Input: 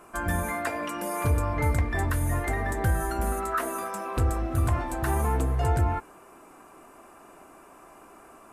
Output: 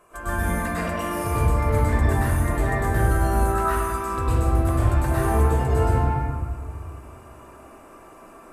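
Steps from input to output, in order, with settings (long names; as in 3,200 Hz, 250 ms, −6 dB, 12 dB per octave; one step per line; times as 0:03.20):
0:03.58–0:04.18: flat-topped bell 590 Hz −9.5 dB 1.1 octaves
convolution reverb RT60 1.6 s, pre-delay 99 ms, DRR −9.5 dB
level −6.5 dB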